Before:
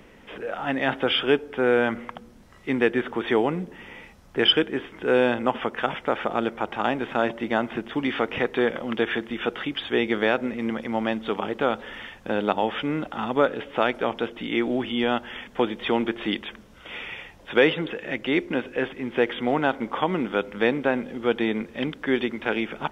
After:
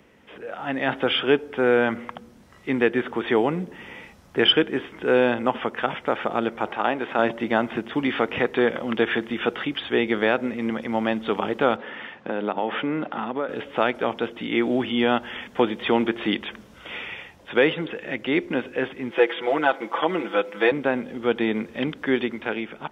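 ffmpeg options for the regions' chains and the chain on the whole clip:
ffmpeg -i in.wav -filter_complex "[0:a]asettb=1/sr,asplit=3[link_01][link_02][link_03];[link_01]atrim=end=6.664[link_04];[link_02]atrim=start=6.66:end=7.19,asetpts=PTS-STARTPTS,afade=type=in:duration=0.004:curve=qsin,afade=type=out:start_time=0.526:duration=0.004:curve=qsin,bass=frequency=250:gain=-9,treble=frequency=4000:gain=-6,acompressor=mode=upward:threshold=-32dB:ratio=2.5:attack=3.2:release=140:knee=2.83:detection=peak[link_05];[link_03]atrim=start=7.186[link_06];[link_04][link_05]acrossfade=duration=0.004:curve1=hsin:curve2=qsin[link_07];[link_07][link_06]acrossfade=duration=0.004:curve1=qsin:curve2=hsin,asettb=1/sr,asplit=3[link_08][link_09][link_10];[link_08]atrim=end=11.764[link_11];[link_09]atrim=start=11.76:end=13.49,asetpts=PTS-STARTPTS,afade=type=in:duration=0.004:curve=qsin,afade=type=out:start_time=1.726:duration=0.004:curve=qsin,acompressor=threshold=-27dB:ratio=2.5:attack=3.2:release=140:knee=1:detection=peak,highpass=170,lowpass=2700[link_12];[link_10]atrim=start=13.486[link_13];[link_11][link_12]acrossfade=duration=0.004:curve1=hsin:curve2=qsin[link_14];[link_14][link_13]acrossfade=duration=0.004:curve1=qsin:curve2=hsin,asettb=1/sr,asplit=3[link_15][link_16][link_17];[link_15]atrim=end=19.114[link_18];[link_16]atrim=start=19.11:end=20.72,asetpts=PTS-STARTPTS,afade=type=in:duration=0.004:curve=qsin,afade=type=out:start_time=1.606:duration=0.004:curve=qsin,highpass=340,aecho=1:1:6:0.99,atrim=end_sample=71001[link_19];[link_17]atrim=start=20.716[link_20];[link_18][link_19]acrossfade=duration=0.004:curve1=hsin:curve2=qsin[link_21];[link_21][link_20]acrossfade=duration=0.004:curve1=qsin:curve2=hsin,acrossover=split=4500[link_22][link_23];[link_23]acompressor=threshold=-55dB:ratio=4:attack=1:release=60[link_24];[link_22][link_24]amix=inputs=2:normalize=0,highpass=61,dynaudnorm=framelen=130:gausssize=11:maxgain=11.5dB,volume=-5dB" out.wav

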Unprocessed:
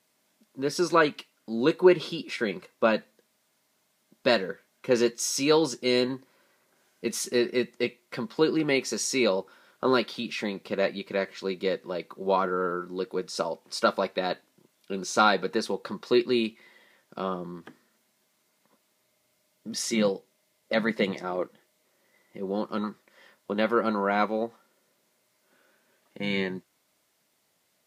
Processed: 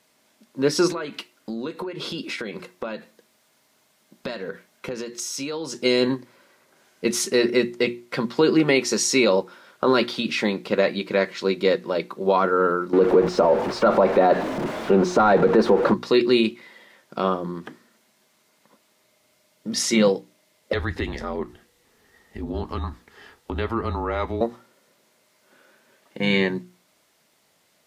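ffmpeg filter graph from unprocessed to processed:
ffmpeg -i in.wav -filter_complex "[0:a]asettb=1/sr,asplit=3[link_01][link_02][link_03];[link_01]atrim=end=0.874[link_04];[link_02]atrim=start=0.87:end=5.76,asetpts=PTS-STARTPTS,afade=type=in:duration=0.004:curve=qsin,afade=type=out:start_time=4.886:duration=0.004:curve=qsin,acompressor=threshold=-34dB:ratio=16:attack=3.2:release=140:knee=1:detection=peak,highshelf=frequency=12000:gain=3.5[link_05];[link_03]atrim=start=5.756[link_06];[link_04][link_05]acrossfade=duration=0.004:curve1=hsin:curve2=qsin[link_07];[link_07][link_06]acrossfade=duration=0.004:curve1=qsin:curve2=hsin,asettb=1/sr,asplit=3[link_08][link_09][link_10];[link_08]atrim=end=12.934[link_11];[link_09]atrim=start=12.93:end=15.94,asetpts=PTS-STARTPTS,afade=type=in:duration=0.004:curve=qsin,afade=type=out:start_time=3.006:duration=0.004:curve=qsin,aeval=exprs='val(0)+0.5*0.0211*sgn(val(0))':channel_layout=same,asplit=2[link_12][link_13];[link_13]highpass=frequency=720:poles=1,volume=11dB,asoftclip=type=tanh:threshold=-7dB[link_14];[link_12][link_14]amix=inputs=2:normalize=0,lowpass=frequency=1700:poles=1,volume=-6dB,tiltshelf=frequency=1300:gain=9.5[link_15];[link_10]atrim=start=15.936[link_16];[link_11][link_15]acrossfade=duration=0.004:curve1=hsin:curve2=qsin[link_17];[link_17][link_16]acrossfade=duration=0.004:curve1=qsin:curve2=hsin,asettb=1/sr,asplit=3[link_18][link_19][link_20];[link_18]atrim=end=20.734[link_21];[link_19]atrim=start=20.73:end=24.41,asetpts=PTS-STARTPTS,afade=type=in:duration=0.004:curve=qsin,afade=type=out:start_time=3.676:duration=0.004:curve=qsin,afreqshift=-130,acompressor=threshold=-37dB:ratio=2:attack=3.2:release=140:knee=1:detection=peak[link_22];[link_20]atrim=start=24.406[link_23];[link_21][link_22]acrossfade=duration=0.004:curve1=hsin:curve2=qsin[link_24];[link_24][link_23]acrossfade=duration=0.004:curve1=qsin:curve2=hsin,highshelf=frequency=9600:gain=-6,bandreject=frequency=60:width_type=h:width=6,bandreject=frequency=120:width_type=h:width=6,bandreject=frequency=180:width_type=h:width=6,bandreject=frequency=240:width_type=h:width=6,bandreject=frequency=300:width_type=h:width=6,bandreject=frequency=360:width_type=h:width=6,alimiter=level_in=15.5dB:limit=-1dB:release=50:level=0:latency=1,volume=-7dB" out.wav

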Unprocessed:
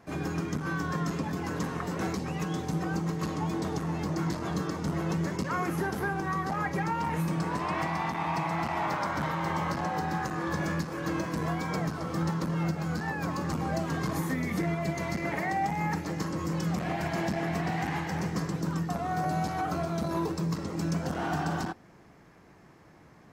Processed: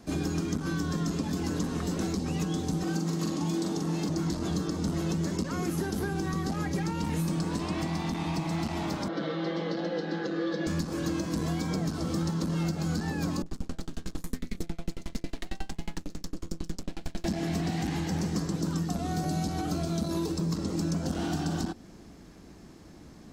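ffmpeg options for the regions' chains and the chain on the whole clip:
ffmpeg -i in.wav -filter_complex "[0:a]asettb=1/sr,asplit=3[link_01][link_02][link_03];[link_01]atrim=end=2.834[link_04];[link_02]atrim=start=2.83:end=4.09,asetpts=PTS-STARTPTS,afade=type=in:duration=0.004:curve=qsin,afade=type=out:start_time=1.256:duration=0.004:curve=qsin,highpass=170,asplit=2[link_05][link_06];[link_06]adelay=42,volume=-3dB[link_07];[link_05][link_07]amix=inputs=2:normalize=0,atrim=end_sample=55566[link_08];[link_03]atrim=start=4.086[link_09];[link_04][link_08]acrossfade=duration=0.004:curve1=hsin:curve2=qsin[link_10];[link_10][link_09]acrossfade=duration=0.004:curve1=qsin:curve2=hsin,asettb=1/sr,asplit=3[link_11][link_12][link_13];[link_11]atrim=end=9.084[link_14];[link_12]atrim=start=9.08:end=10.67,asetpts=PTS-STARTPTS,afade=type=in:duration=0.004:curve=qsin,afade=type=out:start_time=1.586:duration=0.004:curve=qsin,highpass=310,equalizer=frequency=480:width_type=q:width=4:gain=10,equalizer=frequency=930:width_type=q:width=4:gain=-9,equalizer=frequency=2500:width_type=q:width=4:gain=-8,lowpass=frequency=3800:width=0.5412,lowpass=frequency=3800:width=1.3066,aecho=1:1:6:0.69,atrim=end_sample=70119[link_15];[link_13]atrim=start=10.666[link_16];[link_14][link_15]acrossfade=duration=0.004:curve1=hsin:curve2=qsin[link_17];[link_17][link_16]acrossfade=duration=0.004:curve1=qsin:curve2=hsin,asettb=1/sr,asplit=3[link_18][link_19][link_20];[link_18]atrim=end=13.424[link_21];[link_19]atrim=start=13.42:end=17.25,asetpts=PTS-STARTPTS,afade=type=in:duration=0.004:curve=qsin,afade=type=out:start_time=3.826:duration=0.004:curve=qsin,aeval=exprs='max(val(0),0)':channel_layout=same,acrossover=split=810[link_22][link_23];[link_23]adelay=40[link_24];[link_22][link_24]amix=inputs=2:normalize=0,atrim=end_sample=168903,aeval=exprs='val(0)*pow(10,-34*if(lt(mod(11*n/s,1),2*abs(11)/1000),1-mod(11*n/s,1)/(2*abs(11)/1000),(mod(11*n/s,1)-2*abs(11)/1000)/(1-2*abs(11)/1000))/20)':channel_layout=same[link_25];[link_20]atrim=start=17.246[link_26];[link_21][link_25]acrossfade=duration=0.004:curve1=hsin:curve2=qsin[link_27];[link_27][link_26]acrossfade=duration=0.004:curve1=qsin:curve2=hsin,equalizer=frequency=125:width_type=o:width=1:gain=-10,equalizer=frequency=250:width_type=o:width=1:gain=4,equalizer=frequency=500:width_type=o:width=1:gain=-3,equalizer=frequency=1000:width_type=o:width=1:gain=-6,equalizer=frequency=2000:width_type=o:width=1:gain=-7,equalizer=frequency=4000:width_type=o:width=1:gain=5,equalizer=frequency=8000:width_type=o:width=1:gain=5,acrossover=split=560|1700[link_28][link_29][link_30];[link_28]acompressor=threshold=-37dB:ratio=4[link_31];[link_29]acompressor=threshold=-48dB:ratio=4[link_32];[link_30]acompressor=threshold=-46dB:ratio=4[link_33];[link_31][link_32][link_33]amix=inputs=3:normalize=0,lowshelf=frequency=180:gain=9.5,volume=5dB" out.wav

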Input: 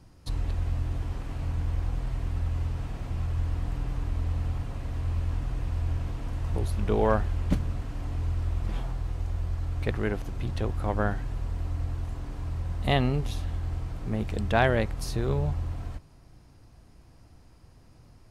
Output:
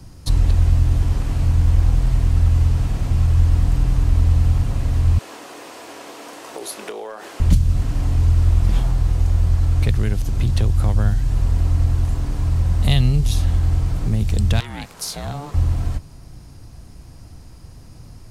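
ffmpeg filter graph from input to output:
ffmpeg -i in.wav -filter_complex "[0:a]asettb=1/sr,asplit=3[link_01][link_02][link_03];[link_01]atrim=end=5.184[link_04];[link_02]atrim=start=5.18:end=7.4,asetpts=PTS-STARTPTS,afade=type=in:duration=0.004:curve=qsin,afade=type=out:start_time=2.216:duration=0.004:curve=qsin,highpass=frequency=360:width=0.5412,highpass=frequency=360:width=1.3066,acompressor=threshold=-33dB:ratio=12:attack=3.2:release=140:knee=1:detection=peak,asplit=2[link_05][link_06];[link_06]adelay=27,volume=-11dB[link_07];[link_05][link_07]amix=inputs=2:normalize=0,atrim=end_sample=97902[link_08];[link_03]atrim=start=7.396[link_09];[link_04][link_08]acrossfade=duration=0.004:curve1=hsin:curve2=qsin[link_10];[link_10][link_09]acrossfade=duration=0.004:curve1=qsin:curve2=hsin,asettb=1/sr,asplit=3[link_11][link_12][link_13];[link_11]atrim=end=14.604[link_14];[link_12]atrim=start=14.6:end=15.54,asetpts=PTS-STARTPTS,afade=type=in:duration=0.004:curve=qsin,afade=type=out:start_time=0.936:duration=0.004:curve=qsin,highpass=430,acompressor=threshold=-28dB:ratio=2.5:attack=3.2:release=140:knee=1:detection=peak,aeval=exprs='val(0)*sin(2*PI*290*n/s)':channel_layout=same[link_15];[link_13]atrim=start=15.536[link_16];[link_14][link_15]acrossfade=duration=0.004:curve1=hsin:curve2=qsin[link_17];[link_17][link_16]acrossfade=duration=0.004:curve1=qsin:curve2=hsin,bass=frequency=250:gain=5,treble=frequency=4000:gain=7,acrossover=split=150|3000[link_18][link_19][link_20];[link_19]acompressor=threshold=-37dB:ratio=6[link_21];[link_18][link_21][link_20]amix=inputs=3:normalize=0,volume=9dB" out.wav

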